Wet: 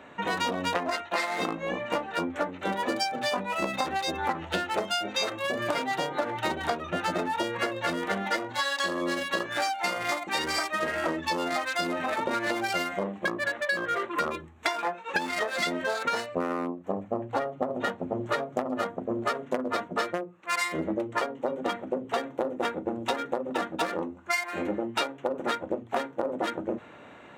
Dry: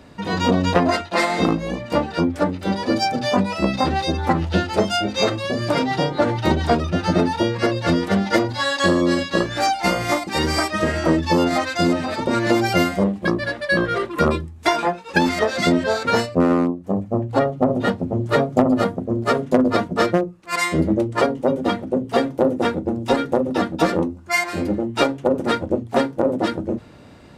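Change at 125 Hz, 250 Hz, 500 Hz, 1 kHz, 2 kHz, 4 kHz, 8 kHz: −18.5, −14.0, −10.0, −7.0, −5.5, −6.5, −6.0 decibels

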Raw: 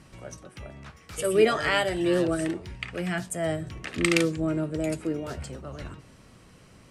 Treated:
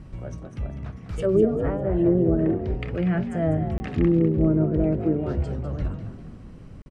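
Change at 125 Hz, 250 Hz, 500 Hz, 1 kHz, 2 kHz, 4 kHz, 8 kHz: +10.0 dB, +6.5 dB, +2.5 dB, −4.0 dB, −11.0 dB, below −15 dB, below −15 dB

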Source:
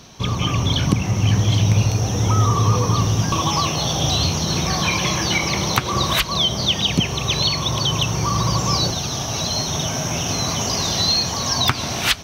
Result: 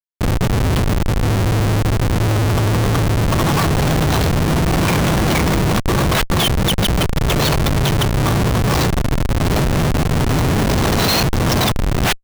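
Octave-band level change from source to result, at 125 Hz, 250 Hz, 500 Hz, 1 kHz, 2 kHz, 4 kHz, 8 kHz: +3.5, +6.0, +7.0, +2.5, +4.0, −3.5, −3.5 decibels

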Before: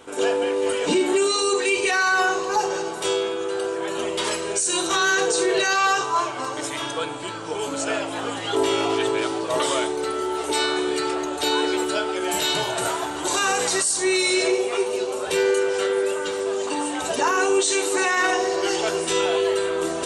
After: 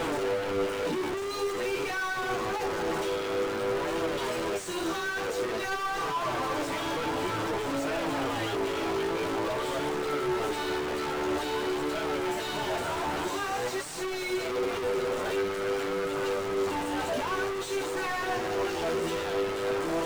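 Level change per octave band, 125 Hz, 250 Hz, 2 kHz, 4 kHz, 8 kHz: +1.0, −5.5, −9.0, −11.0, −16.0 decibels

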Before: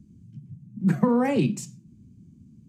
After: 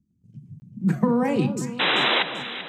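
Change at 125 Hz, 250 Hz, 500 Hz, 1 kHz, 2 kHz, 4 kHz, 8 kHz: +0.5, +0.5, +2.0, +6.5, +15.0, +23.0, +0.5 decibels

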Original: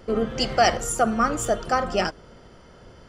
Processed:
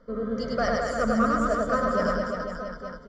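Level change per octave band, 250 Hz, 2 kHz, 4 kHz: +1.5, −2.0, −12.0 decibels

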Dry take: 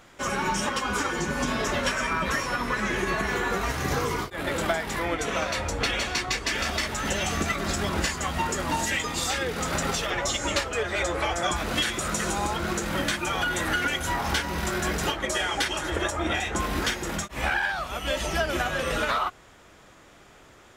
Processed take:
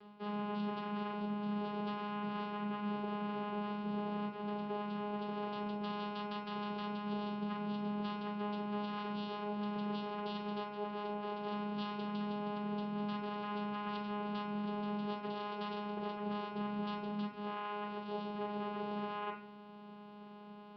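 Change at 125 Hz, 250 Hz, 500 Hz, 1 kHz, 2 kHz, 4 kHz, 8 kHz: −13.0 dB, −5.5 dB, −11.5 dB, −11.0 dB, −22.5 dB, −20.0 dB, below −40 dB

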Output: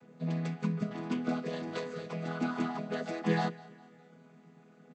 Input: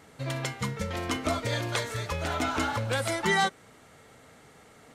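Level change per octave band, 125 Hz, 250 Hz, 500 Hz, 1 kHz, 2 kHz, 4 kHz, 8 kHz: −4.0, +2.0, −5.0, −8.5, −11.0, −14.0, −19.0 decibels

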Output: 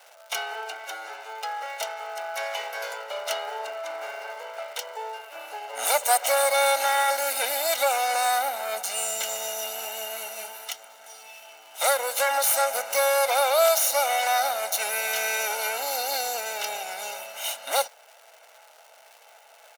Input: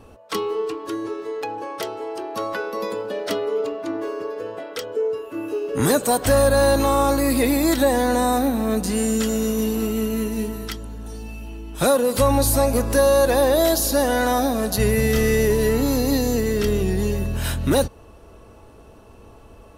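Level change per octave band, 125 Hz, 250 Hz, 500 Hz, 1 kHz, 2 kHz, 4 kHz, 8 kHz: below −40 dB, below −35 dB, −8.0 dB, 0.0 dB, +0.5 dB, +1.0 dB, +0.5 dB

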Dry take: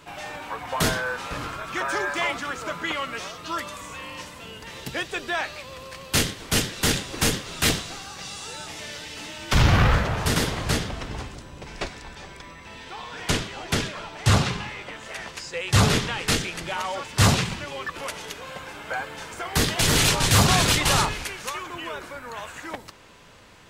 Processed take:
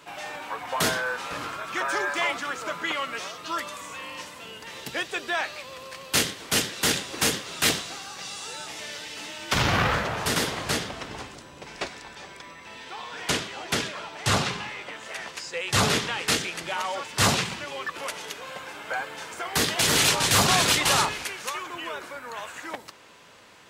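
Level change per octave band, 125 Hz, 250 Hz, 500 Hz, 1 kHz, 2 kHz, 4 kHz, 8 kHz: −9.0, −4.5, −1.5, −0.5, 0.0, 0.0, 0.0 decibels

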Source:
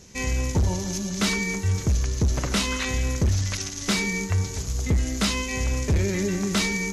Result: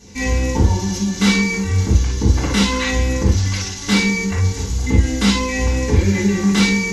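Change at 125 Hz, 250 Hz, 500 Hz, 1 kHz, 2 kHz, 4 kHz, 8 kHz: +7.0, +10.5, +7.0, +7.5, +7.5, +6.5, +3.5 decibels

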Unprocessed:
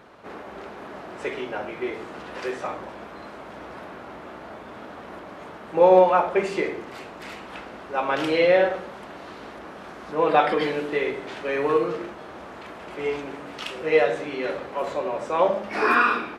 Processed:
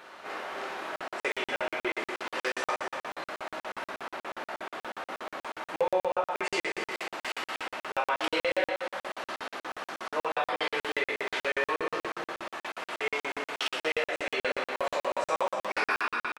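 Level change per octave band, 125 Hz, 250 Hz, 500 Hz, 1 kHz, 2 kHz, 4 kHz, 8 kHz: −14.0 dB, −11.0 dB, −10.0 dB, −7.0 dB, −2.5 dB, +1.5 dB, can't be measured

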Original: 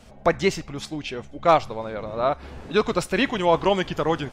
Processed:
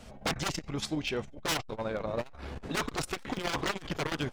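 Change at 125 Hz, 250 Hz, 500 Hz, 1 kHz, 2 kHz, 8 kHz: −6.0, −9.0, −14.0, −13.5, −7.0, +0.5 decibels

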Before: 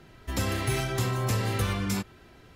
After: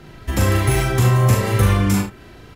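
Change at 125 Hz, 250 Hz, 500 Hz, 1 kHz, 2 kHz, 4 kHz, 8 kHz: +13.0, +11.0, +10.5, +10.0, +9.0, +5.5, +8.5 decibels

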